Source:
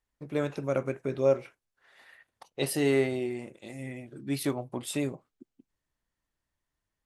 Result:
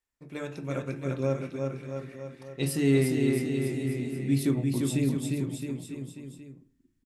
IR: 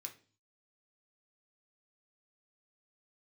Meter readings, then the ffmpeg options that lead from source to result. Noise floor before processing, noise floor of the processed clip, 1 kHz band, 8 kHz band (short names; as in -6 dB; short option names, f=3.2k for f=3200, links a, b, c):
under -85 dBFS, -72 dBFS, -3.5 dB, +1.5 dB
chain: -filter_complex "[0:a]asubboost=boost=10:cutoff=220,aecho=1:1:350|665|948.5|1204|1433:0.631|0.398|0.251|0.158|0.1,asplit=2[a][b];[1:a]atrim=start_sample=2205[c];[b][c]afir=irnorm=-1:irlink=0,volume=6.5dB[d];[a][d]amix=inputs=2:normalize=0,volume=-8.5dB"